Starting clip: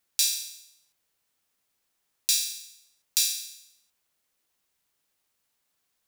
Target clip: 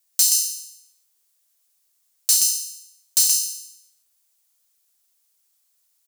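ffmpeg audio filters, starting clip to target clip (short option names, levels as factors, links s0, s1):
-af "afreqshift=370,aecho=1:1:126:0.562,aeval=exprs='0.168*(abs(mod(val(0)/0.168+3,4)-2)-1)':c=same,bass=f=250:g=4,treble=f=4000:g=14,volume=0.596"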